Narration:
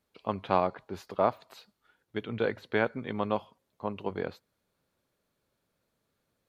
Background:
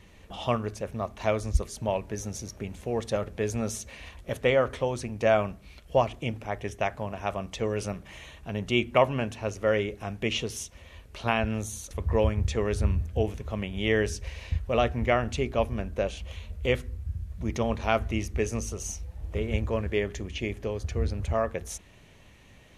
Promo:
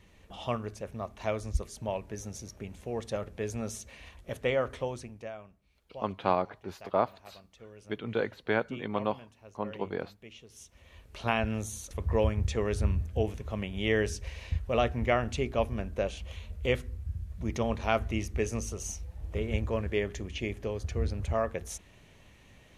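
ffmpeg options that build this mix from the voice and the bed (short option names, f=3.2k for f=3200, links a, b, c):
-filter_complex "[0:a]adelay=5750,volume=-1dB[a];[1:a]volume=13.5dB,afade=t=out:st=4.85:d=0.47:silence=0.158489,afade=t=in:st=10.48:d=0.74:silence=0.112202[b];[a][b]amix=inputs=2:normalize=0"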